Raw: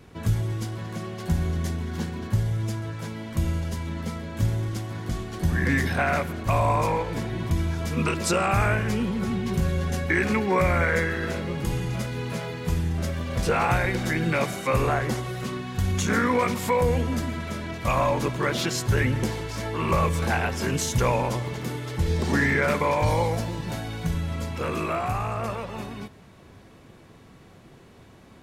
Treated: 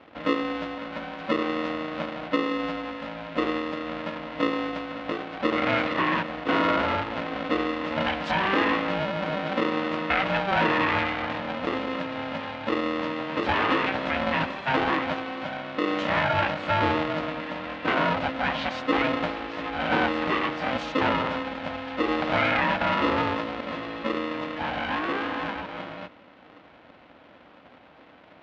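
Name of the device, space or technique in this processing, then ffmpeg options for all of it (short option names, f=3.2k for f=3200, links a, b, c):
ring modulator pedal into a guitar cabinet: -af "aeval=exprs='val(0)*sgn(sin(2*PI*390*n/s))':c=same,highpass=100,equalizer=f=130:t=q:w=4:g=-9,equalizer=f=200:t=q:w=4:g=-4,equalizer=f=480:t=q:w=4:g=-4,lowpass=f=3.4k:w=0.5412,lowpass=f=3.4k:w=1.3066"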